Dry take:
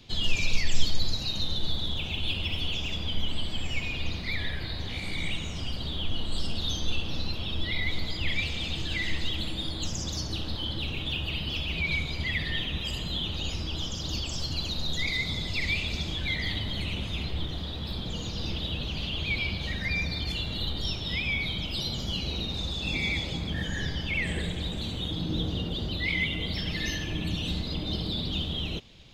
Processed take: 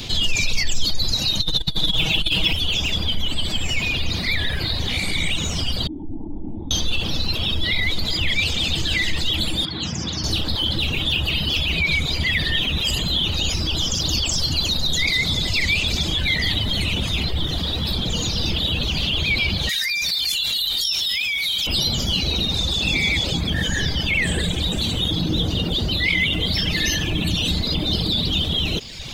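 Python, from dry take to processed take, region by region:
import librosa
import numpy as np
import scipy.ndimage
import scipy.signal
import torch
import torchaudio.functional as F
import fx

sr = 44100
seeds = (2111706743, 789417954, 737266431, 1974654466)

y = fx.chain(x, sr, fx.comb(ms=6.3, depth=0.76),
    fx.over_compress(threshold_db=-25.0, ratio=-0.5), at=(1.4, 2.53))
y = fx.chain(y, sr, fx.formant_cascade(vowel='u'),
    fx.notch(hz=500.0, q=11.0), at=(5.87, 6.71))
y = fx.chain(y, sr, fx.bandpass_edges(low_hz=130.0, high_hz=2600.0),
    fx.peak_eq(hz=570.0, db=-6.5, octaves=2.5),
    fx.notch(hz=580.0, q=9.1), at=(9.65, 10.24))
y = fx.chain(y, sr, fx.pre_emphasis(coefficient=0.97),
    fx.env_flatten(amount_pct=100), at=(19.69, 21.67))
y = fx.high_shelf(y, sr, hz=4800.0, db=9.5)
y = fx.dereverb_blind(y, sr, rt60_s=0.64)
y = fx.env_flatten(y, sr, amount_pct=50)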